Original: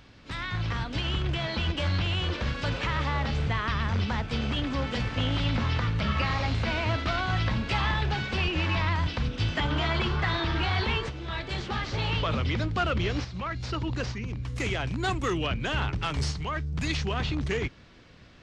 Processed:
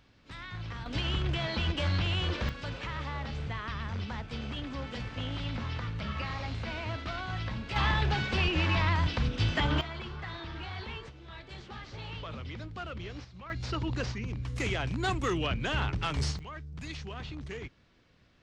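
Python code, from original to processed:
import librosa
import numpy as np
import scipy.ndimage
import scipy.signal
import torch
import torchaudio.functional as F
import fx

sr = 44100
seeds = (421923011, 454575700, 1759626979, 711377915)

y = fx.gain(x, sr, db=fx.steps((0.0, -9.5), (0.86, -2.0), (2.49, -8.5), (7.76, -0.5), (9.81, -13.0), (13.5, -2.0), (16.39, -11.5)))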